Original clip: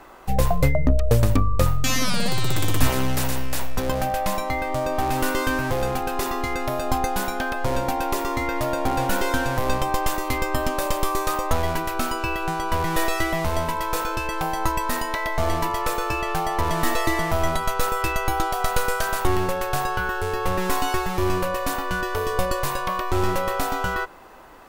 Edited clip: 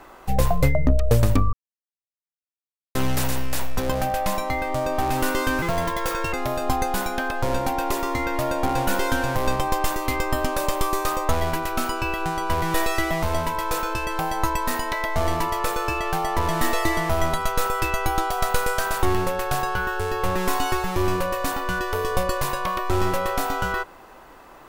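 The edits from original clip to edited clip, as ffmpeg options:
ffmpeg -i in.wav -filter_complex "[0:a]asplit=5[link_01][link_02][link_03][link_04][link_05];[link_01]atrim=end=1.53,asetpts=PTS-STARTPTS,afade=type=out:start_time=1.526:duration=0.004:curve=hsin[link_06];[link_02]atrim=start=1.53:end=2.95,asetpts=PTS-STARTPTS,volume=0[link_07];[link_03]atrim=start=2.95:end=5.624,asetpts=PTS-STARTPTS,afade=type=in:duration=0.004:curve=hsin[link_08];[link_04]atrim=start=5.62:end=6.55,asetpts=PTS-STARTPTS,asetrate=57771,aresample=44100[link_09];[link_05]atrim=start=6.546[link_10];[link_06][link_07][link_08]concat=n=3:v=0:a=1[link_11];[link_11][link_09]acrossfade=duration=0.004:curve1=hsin:curve2=hsin[link_12];[link_12][link_10]acrossfade=duration=0.004:curve1=hsin:curve2=hsin" out.wav

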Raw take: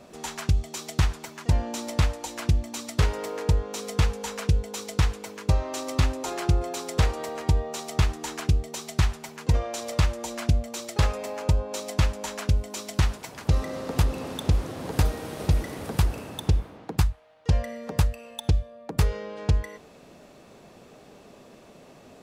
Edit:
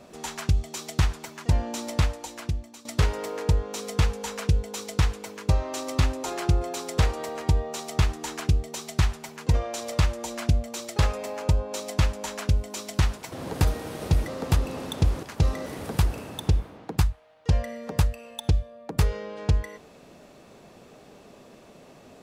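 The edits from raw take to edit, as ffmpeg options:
ffmpeg -i in.wav -filter_complex "[0:a]asplit=6[link_01][link_02][link_03][link_04][link_05][link_06];[link_01]atrim=end=2.85,asetpts=PTS-STARTPTS,afade=type=out:start_time=1.96:duration=0.89:silence=0.16788[link_07];[link_02]atrim=start=2.85:end=13.322,asetpts=PTS-STARTPTS,afade=type=in:duration=0.004:curve=hsin:silence=0.16788[link_08];[link_03]atrim=start=14.698:end=15.662[link_09];[link_04]atrim=start=13.748:end=14.702[link_10];[link_05]atrim=start=13.318:end=13.752[link_11];[link_06]atrim=start=15.658[link_12];[link_07][link_08]concat=n=2:v=0:a=1[link_13];[link_13][link_09]acrossfade=duration=0.004:curve1=hsin:curve2=hsin[link_14];[link_14][link_10]acrossfade=duration=0.004:curve1=hsin:curve2=hsin[link_15];[link_15][link_11]acrossfade=duration=0.004:curve1=hsin:curve2=hsin[link_16];[link_16][link_12]acrossfade=duration=0.004:curve1=hsin:curve2=hsin" out.wav

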